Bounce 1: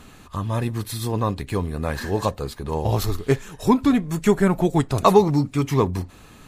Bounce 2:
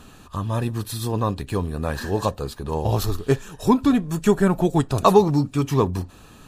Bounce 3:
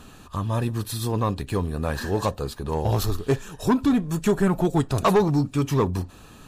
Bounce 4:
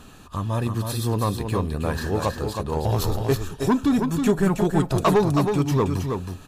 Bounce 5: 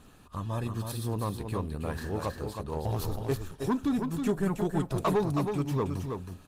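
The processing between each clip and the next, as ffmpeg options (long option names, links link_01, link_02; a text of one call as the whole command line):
ffmpeg -i in.wav -af "bandreject=frequency=2100:width=5.2" out.wav
ffmpeg -i in.wav -af "asoftclip=type=tanh:threshold=-12.5dB" out.wav
ffmpeg -i in.wav -af "aecho=1:1:320:0.531" out.wav
ffmpeg -i in.wav -af "volume=-8dB" -ar 48000 -c:a libopus -b:a 24k out.opus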